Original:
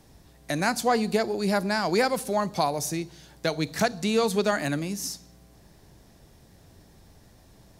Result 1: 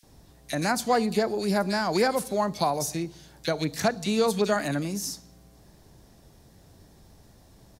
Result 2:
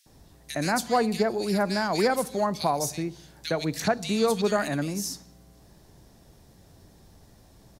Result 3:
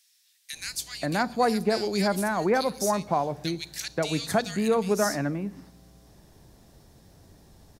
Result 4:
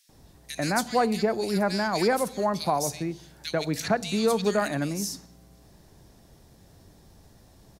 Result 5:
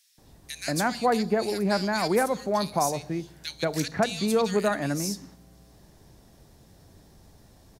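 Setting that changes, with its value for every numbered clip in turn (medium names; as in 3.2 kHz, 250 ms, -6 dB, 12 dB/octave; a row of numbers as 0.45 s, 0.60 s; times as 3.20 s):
bands offset in time, time: 30 ms, 60 ms, 530 ms, 90 ms, 180 ms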